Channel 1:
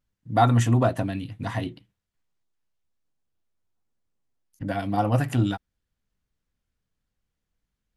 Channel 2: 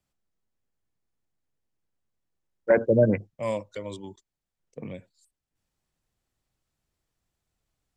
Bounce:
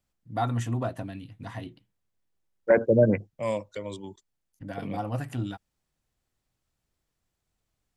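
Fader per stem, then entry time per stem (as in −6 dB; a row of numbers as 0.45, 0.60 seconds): −9.0, 0.0 decibels; 0.00, 0.00 seconds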